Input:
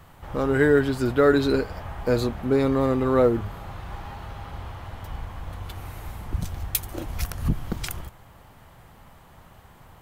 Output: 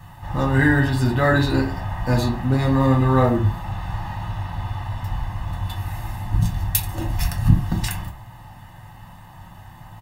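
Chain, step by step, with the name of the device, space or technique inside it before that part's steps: microphone above a desk (comb 1.1 ms, depth 79%; reverb RT60 0.40 s, pre-delay 3 ms, DRR -2 dB)

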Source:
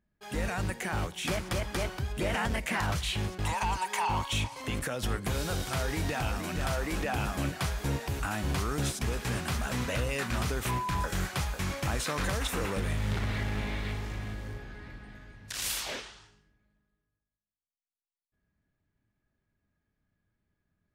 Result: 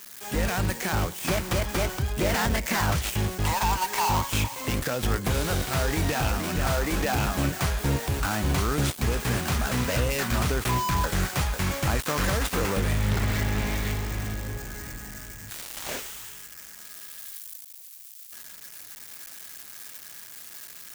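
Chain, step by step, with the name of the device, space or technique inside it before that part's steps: budget class-D amplifier (switching dead time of 0.13 ms; switching spikes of -31 dBFS); gain +6 dB

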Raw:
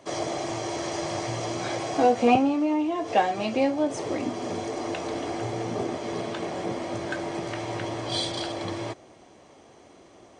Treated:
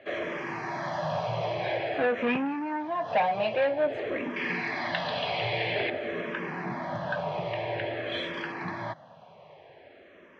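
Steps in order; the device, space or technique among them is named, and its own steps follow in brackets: barber-pole phaser into a guitar amplifier (endless phaser -0.5 Hz; soft clip -23.5 dBFS, distortion -11 dB; speaker cabinet 97–3800 Hz, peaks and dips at 160 Hz +9 dB, 310 Hz -7 dB, 600 Hz +6 dB, 950 Hz +5 dB, 1700 Hz +10 dB, 2500 Hz +6 dB); 4.36–5.9 band shelf 3000 Hz +13.5 dB

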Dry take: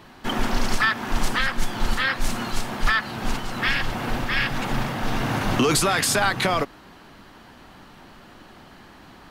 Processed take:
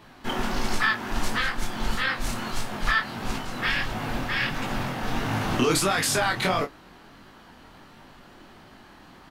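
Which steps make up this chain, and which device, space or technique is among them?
double-tracked vocal (doubler 27 ms -12 dB; chorus 1.5 Hz, delay 18.5 ms, depth 6.4 ms)

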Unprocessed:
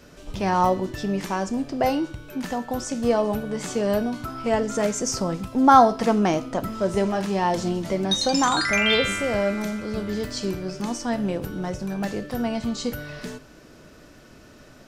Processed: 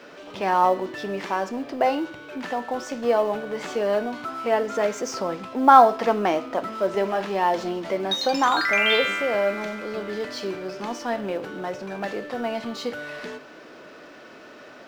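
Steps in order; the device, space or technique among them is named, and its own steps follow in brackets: phone line with mismatched companding (BPF 380–3400 Hz; G.711 law mismatch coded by mu); gain +1.5 dB

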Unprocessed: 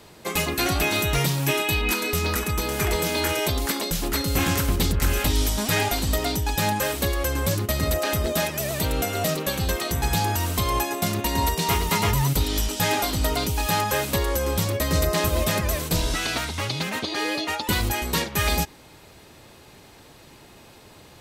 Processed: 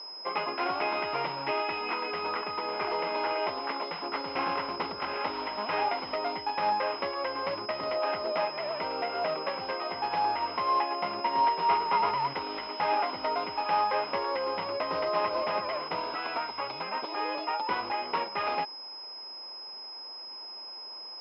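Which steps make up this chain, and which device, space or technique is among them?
toy sound module (decimation joined by straight lines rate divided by 4×; pulse-width modulation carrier 5100 Hz; speaker cabinet 540–4900 Hz, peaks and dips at 970 Hz +6 dB, 1800 Hz -10 dB, 3500 Hz -6 dB); gain -1.5 dB

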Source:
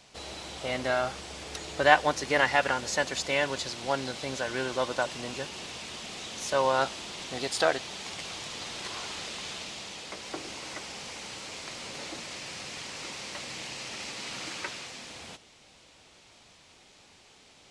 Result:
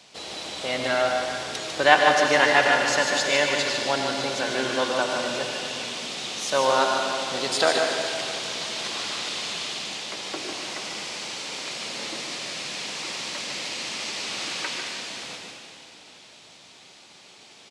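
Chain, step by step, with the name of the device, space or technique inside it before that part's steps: PA in a hall (HPF 150 Hz 12 dB/oct; bell 3800 Hz +3.5 dB 1.1 oct; echo 0.149 s -6 dB; reverb RT60 2.7 s, pre-delay 75 ms, DRR 3 dB); gain +3 dB

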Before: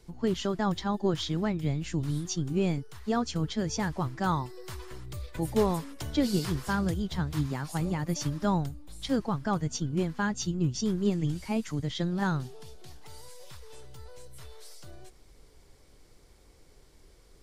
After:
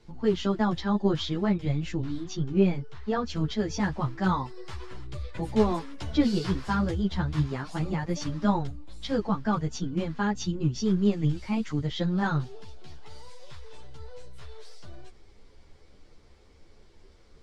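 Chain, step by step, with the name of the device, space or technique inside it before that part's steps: 1.91–3.3 air absorption 80 m; string-machine ensemble chorus (ensemble effect; LPF 4800 Hz 12 dB/oct); gain +5 dB

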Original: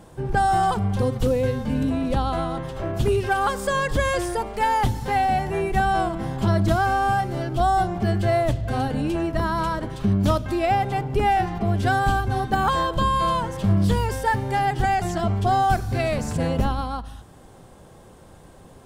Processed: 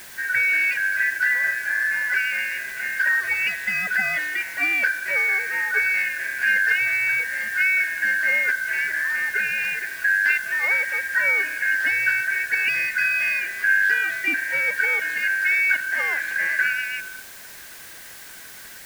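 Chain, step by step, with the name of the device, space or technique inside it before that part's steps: split-band scrambled radio (four-band scrambler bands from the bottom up 2143; BPF 400–3200 Hz; white noise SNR 19 dB)

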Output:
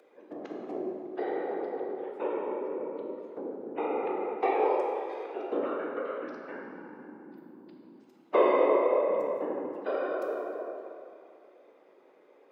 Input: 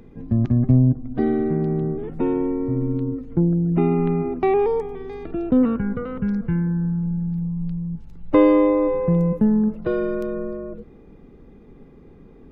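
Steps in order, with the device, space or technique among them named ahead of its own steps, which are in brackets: whispering ghost (whisperiser; HPF 450 Hz 24 dB/oct; reverb RT60 2.5 s, pre-delay 9 ms, DRR 0.5 dB); gain -5.5 dB

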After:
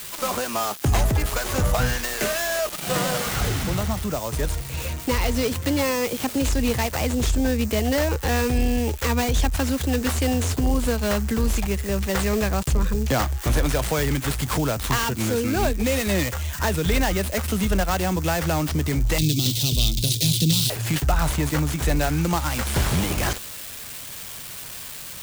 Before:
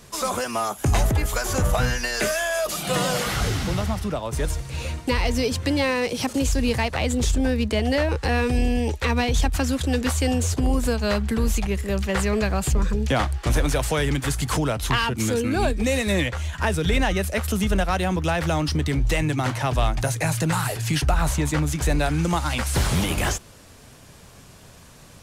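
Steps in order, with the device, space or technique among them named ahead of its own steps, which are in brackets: budget class-D amplifier (switching dead time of 0.13 ms; switching spikes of -19 dBFS); 19.18–20.7 EQ curve 100 Hz 0 dB, 180 Hz +5 dB, 430 Hz -3 dB, 730 Hz -20 dB, 1600 Hz -23 dB, 3600 Hz +15 dB, 6900 Hz +6 dB

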